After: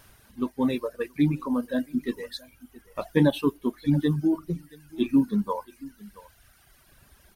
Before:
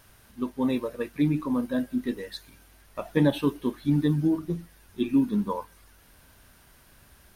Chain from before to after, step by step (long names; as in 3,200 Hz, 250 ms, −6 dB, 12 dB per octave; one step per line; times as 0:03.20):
single-tap delay 674 ms −18.5 dB
reverb reduction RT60 1.6 s
level +2 dB